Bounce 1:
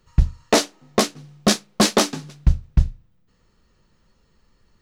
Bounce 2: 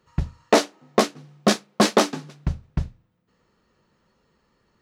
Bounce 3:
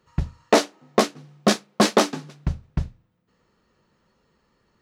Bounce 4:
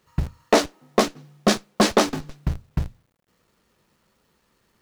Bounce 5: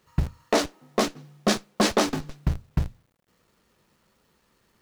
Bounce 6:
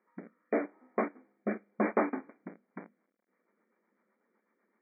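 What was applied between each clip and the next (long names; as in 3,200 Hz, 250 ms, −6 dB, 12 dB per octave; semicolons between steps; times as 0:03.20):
high-pass filter 260 Hz 6 dB per octave; high-shelf EQ 2,800 Hz −9.5 dB; level +2.5 dB
no processing that can be heard
in parallel at −7.5 dB: comparator with hysteresis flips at −32 dBFS; on the sum: bit reduction 11 bits; level −1 dB
brickwall limiter −10.5 dBFS, peak gain reduction 7 dB
rotating-speaker cabinet horn 0.85 Hz, later 8 Hz, at 0:02.47; linear-phase brick-wall band-pass 190–2,400 Hz; level −5.5 dB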